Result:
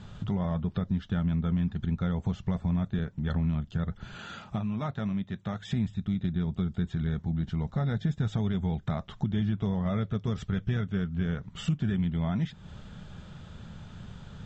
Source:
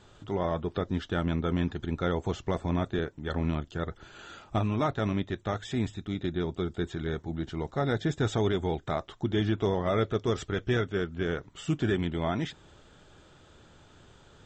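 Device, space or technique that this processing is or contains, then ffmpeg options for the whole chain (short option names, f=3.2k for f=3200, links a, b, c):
jukebox: -filter_complex "[0:a]lowpass=6k,lowshelf=f=250:t=q:w=3:g=7.5,acompressor=threshold=-34dB:ratio=3,asettb=1/sr,asplit=3[a][b][c];[a]atrim=end=4.174[d];[b]atrim=start=4.17:end=5.73,asetpts=PTS-STARTPTS,afade=t=in:d=0.004:c=qsin,afade=t=out:st=1.556:d=0.004:c=qsin,highpass=f=180:p=1[e];[c]atrim=start=5.726[f];[d][e]acrossfade=d=0.004:c1=hsin:c2=qsin[g];[g][f]acrossfade=d=0.004:c1=qsin:c2=hsin,volume=4.5dB"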